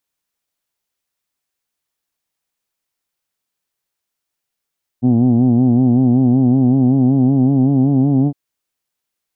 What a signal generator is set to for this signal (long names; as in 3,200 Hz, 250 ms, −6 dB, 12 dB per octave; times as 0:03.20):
vowel from formants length 3.31 s, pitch 120 Hz, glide +2.5 semitones, F1 250 Hz, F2 760 Hz, F3 3,100 Hz